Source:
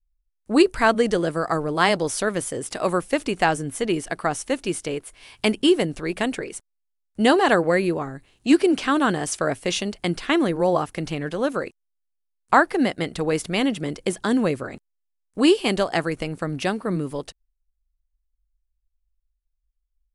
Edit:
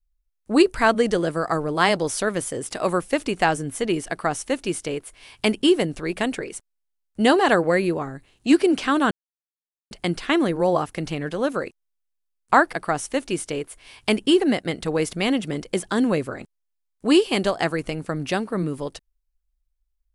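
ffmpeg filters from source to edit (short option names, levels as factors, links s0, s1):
-filter_complex "[0:a]asplit=5[s0][s1][s2][s3][s4];[s0]atrim=end=9.11,asetpts=PTS-STARTPTS,afade=t=out:st=9.106:d=0.004:c=hsin[s5];[s1]atrim=start=9.11:end=9.91,asetpts=PTS-STARTPTS,volume=0[s6];[s2]atrim=start=9.91:end=12.732,asetpts=PTS-STARTPTS,afade=t=in:d=0.004:c=hsin[s7];[s3]atrim=start=4.088:end=5.762[s8];[s4]atrim=start=12.728[s9];[s5][s6][s7]concat=n=3:v=0:a=1[s10];[s10][s8]acrossfade=d=0.004:c1=hsin:c2=hsin[s11];[s11][s9]acrossfade=d=0.004:c1=hsin:c2=hsin"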